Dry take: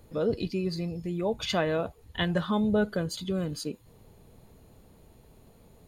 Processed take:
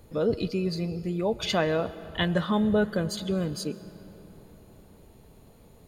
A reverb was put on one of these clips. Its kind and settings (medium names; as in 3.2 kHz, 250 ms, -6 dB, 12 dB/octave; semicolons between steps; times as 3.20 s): algorithmic reverb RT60 4.3 s, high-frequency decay 0.55×, pre-delay 85 ms, DRR 16 dB; trim +2 dB